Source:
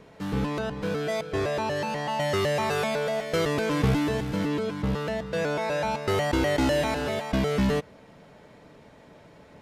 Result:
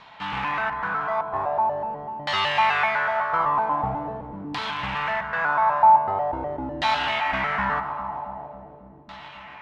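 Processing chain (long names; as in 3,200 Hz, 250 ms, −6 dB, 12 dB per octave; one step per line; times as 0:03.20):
delay that swaps between a low-pass and a high-pass 136 ms, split 1,000 Hz, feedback 89%, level −13 dB
in parallel at −8.5 dB: wrap-around overflow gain 26 dB
on the sum: auto-filter low-pass saw down 0.44 Hz 330–4,000 Hz
low shelf with overshoot 630 Hz −11.5 dB, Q 3
level +2 dB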